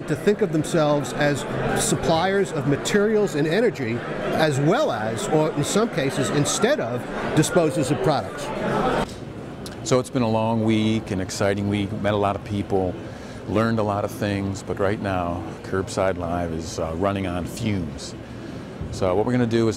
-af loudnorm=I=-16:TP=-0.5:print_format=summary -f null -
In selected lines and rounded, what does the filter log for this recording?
Input Integrated:    -22.8 LUFS
Input True Peak:      -7.8 dBTP
Input LRA:             4.0 LU
Input Threshold:     -33.2 LUFS